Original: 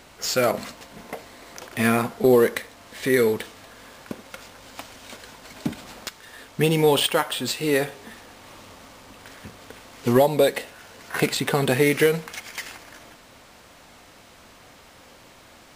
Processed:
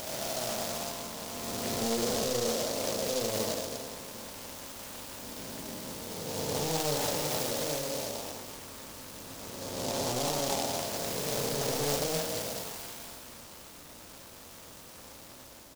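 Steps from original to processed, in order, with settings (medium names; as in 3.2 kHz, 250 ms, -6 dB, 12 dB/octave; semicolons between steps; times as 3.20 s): spectral blur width 696 ms; band-stop 730 Hz, Q 12; in parallel at -2.5 dB: compression, threshold -41 dBFS, peak gain reduction 18 dB; on the sum: overload inside the chain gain 25.5 dB; on a send: early reflections 35 ms -8.5 dB, 74 ms -3 dB; on the sum: formant shift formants +6 st; delay time shaken by noise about 5 kHz, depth 0.15 ms; trim -4.5 dB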